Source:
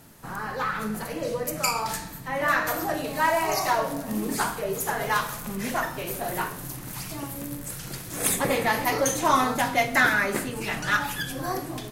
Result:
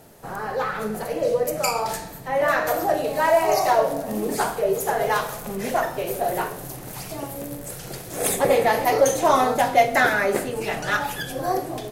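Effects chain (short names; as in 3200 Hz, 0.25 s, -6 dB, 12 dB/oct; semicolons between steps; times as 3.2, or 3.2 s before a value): band shelf 550 Hz +8.5 dB 1.3 oct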